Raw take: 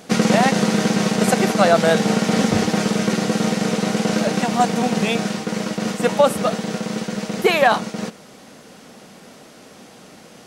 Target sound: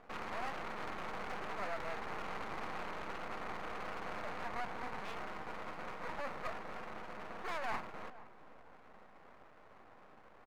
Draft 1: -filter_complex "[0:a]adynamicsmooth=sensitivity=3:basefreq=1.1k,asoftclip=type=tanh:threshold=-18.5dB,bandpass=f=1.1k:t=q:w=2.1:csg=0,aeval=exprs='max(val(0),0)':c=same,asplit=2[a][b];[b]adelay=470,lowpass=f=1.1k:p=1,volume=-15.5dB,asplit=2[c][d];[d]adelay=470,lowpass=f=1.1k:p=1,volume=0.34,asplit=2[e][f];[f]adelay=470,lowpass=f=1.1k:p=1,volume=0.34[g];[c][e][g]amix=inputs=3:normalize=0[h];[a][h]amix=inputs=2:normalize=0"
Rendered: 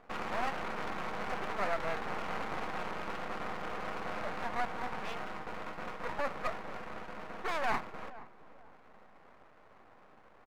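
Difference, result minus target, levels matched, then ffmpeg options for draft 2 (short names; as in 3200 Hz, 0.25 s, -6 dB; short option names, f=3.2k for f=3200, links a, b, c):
soft clip: distortion -4 dB
-filter_complex "[0:a]adynamicsmooth=sensitivity=3:basefreq=1.1k,asoftclip=type=tanh:threshold=-27dB,bandpass=f=1.1k:t=q:w=2.1:csg=0,aeval=exprs='max(val(0),0)':c=same,asplit=2[a][b];[b]adelay=470,lowpass=f=1.1k:p=1,volume=-15.5dB,asplit=2[c][d];[d]adelay=470,lowpass=f=1.1k:p=1,volume=0.34,asplit=2[e][f];[f]adelay=470,lowpass=f=1.1k:p=1,volume=0.34[g];[c][e][g]amix=inputs=3:normalize=0[h];[a][h]amix=inputs=2:normalize=0"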